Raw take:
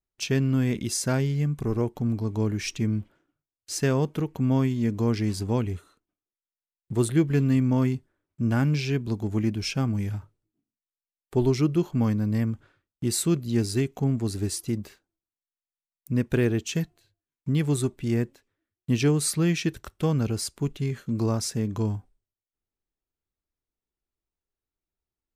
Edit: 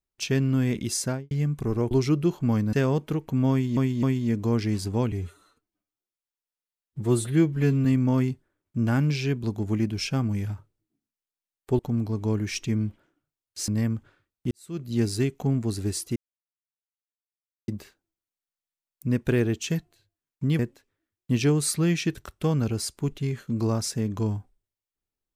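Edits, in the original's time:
0:01.00–0:01.31: fade out and dull
0:01.91–0:03.80: swap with 0:11.43–0:12.25
0:04.58–0:04.84: repeat, 3 plays
0:05.67–0:07.49: time-stretch 1.5×
0:13.08–0:13.51: fade in quadratic
0:14.73: splice in silence 1.52 s
0:17.64–0:18.18: remove

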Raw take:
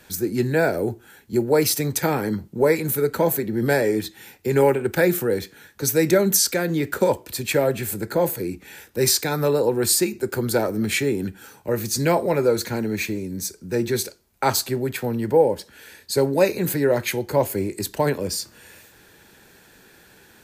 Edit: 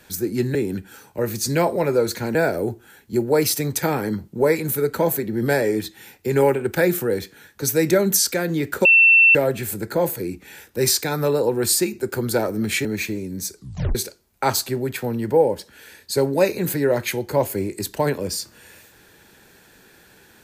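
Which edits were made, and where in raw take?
0:07.05–0:07.55: beep over 2,690 Hz −9 dBFS
0:11.05–0:12.85: move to 0:00.55
0:13.56: tape stop 0.39 s

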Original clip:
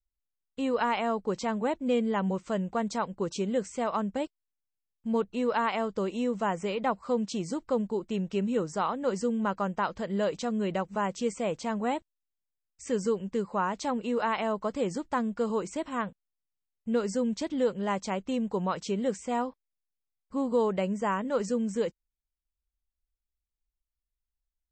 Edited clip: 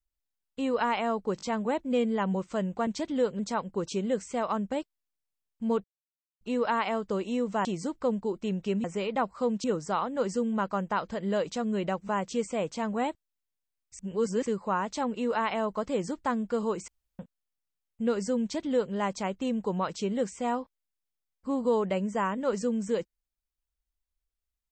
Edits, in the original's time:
0:01.37: stutter 0.02 s, 3 plays
0:05.28: splice in silence 0.57 s
0:06.52–0:07.32: move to 0:08.51
0:12.86–0:13.33: reverse
0:15.75–0:16.06: fill with room tone
0:17.29–0:17.81: duplicate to 0:02.83

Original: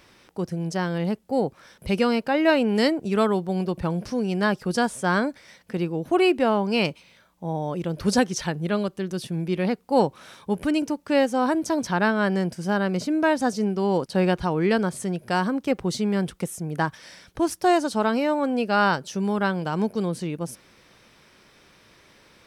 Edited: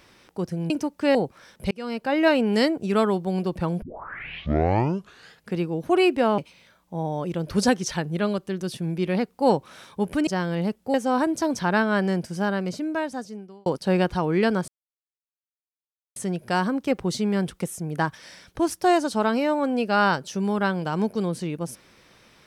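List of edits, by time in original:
0:00.70–0:01.37: swap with 0:10.77–0:11.22
0:01.93–0:02.40: fade in
0:04.04: tape start 1.74 s
0:06.60–0:06.88: remove
0:12.55–0:13.94: fade out linear
0:14.96: splice in silence 1.48 s

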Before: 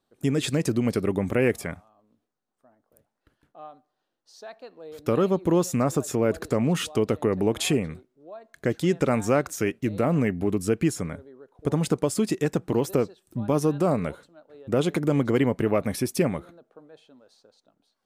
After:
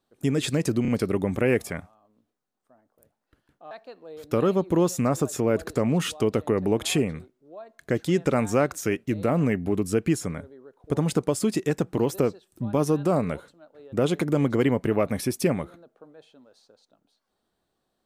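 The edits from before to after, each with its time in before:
0:00.82: stutter 0.03 s, 3 plays
0:03.65–0:04.46: remove

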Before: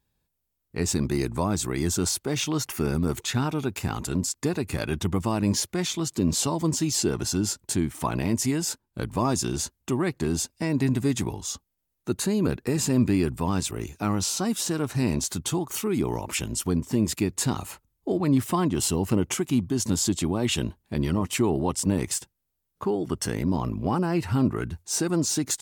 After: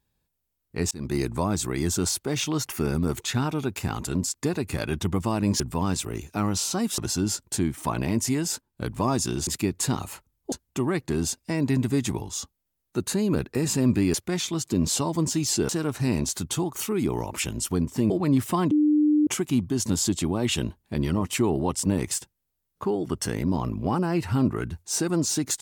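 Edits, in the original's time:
0:00.91–0:01.16: fade in
0:05.60–0:07.15: swap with 0:13.26–0:14.64
0:17.05–0:18.10: move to 0:09.64
0:18.71–0:19.27: beep over 300 Hz −16.5 dBFS

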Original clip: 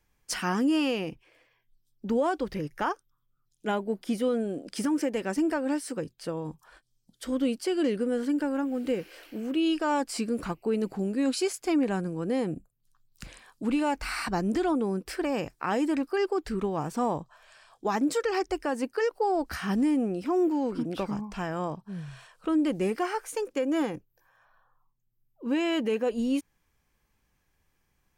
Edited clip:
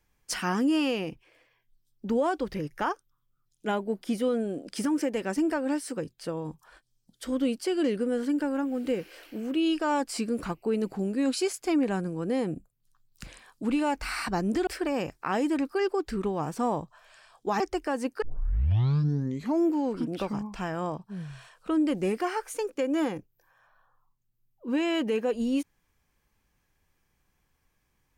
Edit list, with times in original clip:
0:14.67–0:15.05: remove
0:17.98–0:18.38: remove
0:19.00: tape start 1.49 s

